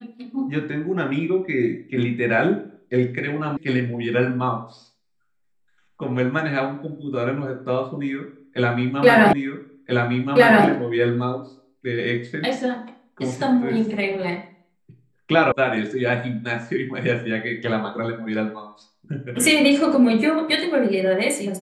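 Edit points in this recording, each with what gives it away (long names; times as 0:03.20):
0:03.57: cut off before it has died away
0:09.33: the same again, the last 1.33 s
0:15.52: cut off before it has died away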